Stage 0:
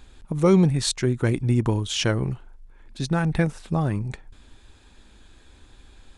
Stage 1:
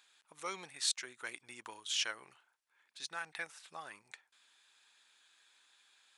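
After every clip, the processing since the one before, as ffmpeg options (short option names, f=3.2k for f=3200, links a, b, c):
-af "highpass=1.4k,volume=-7.5dB"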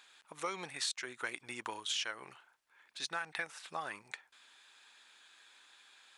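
-af "highshelf=f=3.9k:g=-6.5,acompressor=threshold=-43dB:ratio=6,volume=9dB"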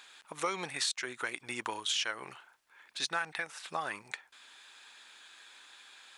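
-af "alimiter=level_in=3dB:limit=-24dB:level=0:latency=1:release=427,volume=-3dB,volume=6.5dB"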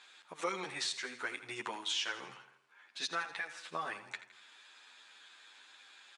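-filter_complex "[0:a]highpass=130,lowpass=7.3k,asplit=2[a][b];[b]aecho=0:1:82|164|246|328|410:0.224|0.119|0.0629|0.0333|0.0177[c];[a][c]amix=inputs=2:normalize=0,asplit=2[d][e];[e]adelay=10.2,afreqshift=1.1[f];[d][f]amix=inputs=2:normalize=1"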